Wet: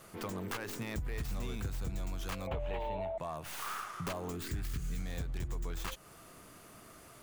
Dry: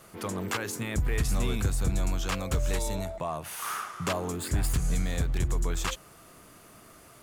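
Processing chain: tracing distortion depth 0.17 ms; 2.47–3.18 EQ curve 310 Hz 0 dB, 850 Hz +14 dB, 1300 Hz -1 dB, 2900 Hz +6 dB, 5500 Hz -21 dB; compressor 2.5:1, threshold -36 dBFS, peak gain reduction 10 dB; 4.37–4.99 band shelf 720 Hz -9 dB 1.2 oct; gain -2 dB

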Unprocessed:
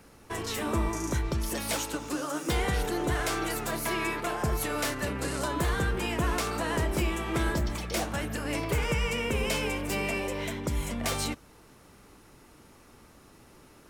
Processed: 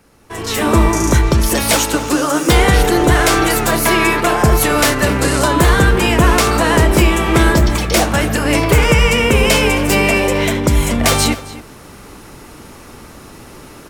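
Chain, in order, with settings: outdoor echo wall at 46 m, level -16 dB; AGC gain up to 16 dB; gain +2 dB

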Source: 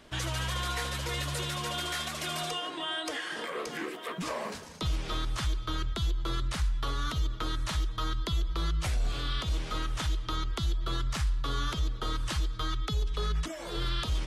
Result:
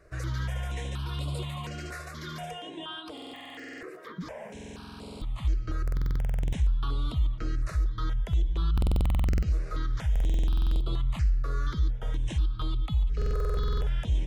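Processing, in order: HPF 45 Hz 6 dB/oct; 2.99–5.45 compressor, threshold -34 dBFS, peak gain reduction 7 dB; tilt -2 dB/oct; stuck buffer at 3.13/4.52/5.83/8.73/10.11/13.17, samples 2048, times 14; step phaser 4.2 Hz 880–6100 Hz; gain -1.5 dB

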